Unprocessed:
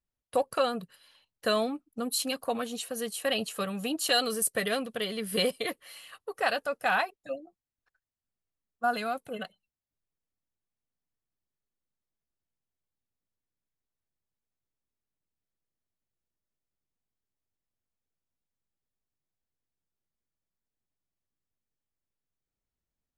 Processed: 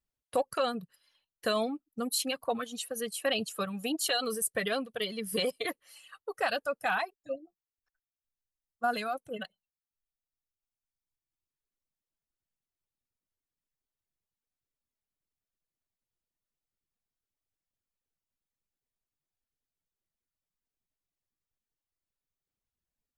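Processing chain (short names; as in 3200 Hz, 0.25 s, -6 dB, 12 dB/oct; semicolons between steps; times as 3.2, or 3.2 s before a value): limiter -19 dBFS, peak gain reduction 5.5 dB; reverb removal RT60 1.9 s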